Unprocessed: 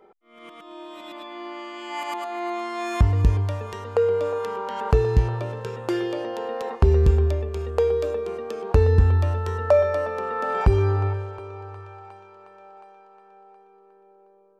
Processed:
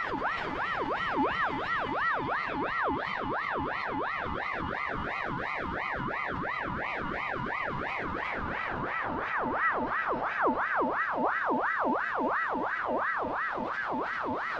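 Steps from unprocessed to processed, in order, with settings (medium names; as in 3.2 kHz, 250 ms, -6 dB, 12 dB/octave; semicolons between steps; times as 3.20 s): pitch bend over the whole clip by -8 st starting unshifted; three-band isolator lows -13 dB, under 180 Hz, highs -21 dB, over 3.9 kHz; Paulstretch 9.5×, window 0.50 s, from 5.80 s; in parallel at -2.5 dB: compressor with a negative ratio -36 dBFS, ratio -1; on the sum: ring modulator with a swept carrier 1.1 kHz, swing 50%, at 2.9 Hz; trim -3 dB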